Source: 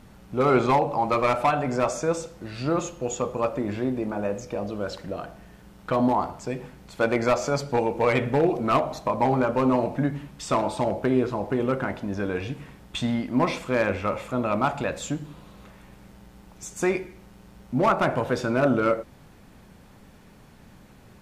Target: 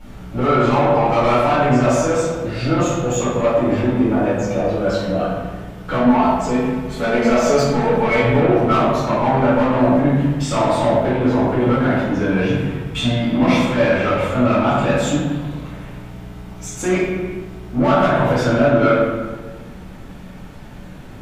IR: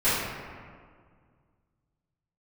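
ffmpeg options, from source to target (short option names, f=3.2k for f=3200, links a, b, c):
-filter_complex "[0:a]asettb=1/sr,asplit=3[a][b][c];[a]atrim=end=5.964[d];[b]atrim=start=5.96:end=8.21,asetpts=PTS-STARTPTS,afade=t=in:d=0.004:c=qsin,afade=t=out:st=2.246:d=0.004:c=qsin,aecho=1:1:4.6:0.73,atrim=end_sample=99225[e];[c]atrim=start=8.206[f];[d][e]acrossfade=d=0.004:c1=hsin:c2=qsin[g];[g][f]acrossfade=d=0.004:c1=qsin:c2=hsin,alimiter=limit=-17dB:level=0:latency=1:release=19,asoftclip=type=tanh:threshold=-23dB[h];[1:a]atrim=start_sample=2205,asetrate=61740,aresample=44100[i];[h][i]afir=irnorm=-1:irlink=0,volume=-1dB"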